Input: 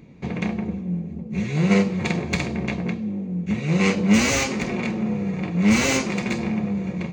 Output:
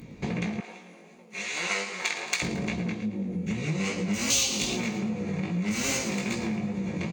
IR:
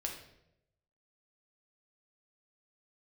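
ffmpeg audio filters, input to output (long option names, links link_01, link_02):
-filter_complex "[0:a]asettb=1/sr,asplit=3[link_01][link_02][link_03];[link_01]atrim=end=4.304[link_04];[link_02]atrim=start=4.3:end=4.75,asetpts=PTS-STARTPTS,afade=type=in:duration=0.004:curve=qsin,afade=type=out:start_time=0.446:duration=0.004:curve=qsin,highshelf=frequency=2500:width_type=q:width=3:gain=8[link_05];[link_03]atrim=start=4.746[link_06];[link_04][link_05]acrossfade=duration=0.004:curve1=hsin:curve2=qsin[link_07];[link_07][link_06]acrossfade=duration=0.004:curve1=qsin:curve2=hsin,asplit=2[link_08][link_09];[link_09]aecho=0:1:111|222|333|444|555:0.2|0.0998|0.0499|0.0249|0.0125[link_10];[link_08][link_10]amix=inputs=2:normalize=0,flanger=delay=16.5:depth=3.9:speed=2.5,asettb=1/sr,asplit=3[link_11][link_12][link_13];[link_11]atrim=end=0.604[link_14];[link_12]atrim=start=0.6:end=2.42,asetpts=PTS-STARTPTS,afade=type=in:duration=0.004:curve=qsin,afade=type=out:start_time=1.816:duration=0.004:curve=qsin,highpass=910[link_15];[link_13]atrim=start=2.416[link_16];[link_14][link_15]acrossfade=duration=0.004:curve1=hsin:curve2=qsin[link_17];[link_17][link_16]acrossfade=duration=0.004:curve1=qsin:curve2=hsin,acompressor=threshold=-33dB:ratio=6,equalizer=frequency=16000:width_type=o:width=1.7:gain=11,volume=5.5dB"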